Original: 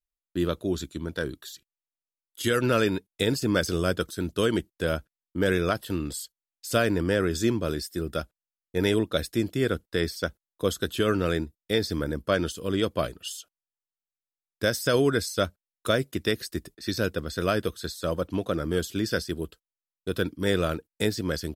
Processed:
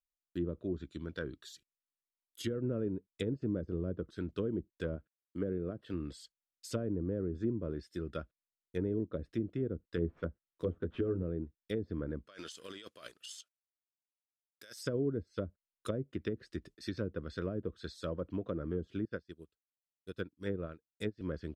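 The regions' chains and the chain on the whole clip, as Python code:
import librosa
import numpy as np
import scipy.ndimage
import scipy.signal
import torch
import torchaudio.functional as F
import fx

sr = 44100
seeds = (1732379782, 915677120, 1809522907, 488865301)

y = fx.chain(x, sr, fx.highpass(hz=110.0, slope=6),
    fx.dynamic_eq(hz=900.0, q=5.8, threshold_db=-51.0, ratio=4.0, max_db=-7), at=(4.96, 5.94))
y = fx.chain(y, sr, fx.median_filter(points=9),
    fx.doubler(ms=12.0, db=-3.5), at=(9.96, 11.23))
y = fx.chain(y, sr, fx.law_mismatch(coded='A'),
    fx.highpass(hz=1300.0, slope=6),
    fx.over_compress(threshold_db=-40.0, ratio=-1.0), at=(12.27, 14.81))
y = fx.chain(y, sr, fx.notch(hz=3100.0, q=20.0),
    fx.upward_expand(threshold_db=-38.0, expansion=2.5), at=(19.05, 21.21))
y = fx.env_lowpass_down(y, sr, base_hz=450.0, full_db=-21.0)
y = fx.peak_eq(y, sr, hz=810.0, db=-9.5, octaves=0.48)
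y = y * 10.0 ** (-8.5 / 20.0)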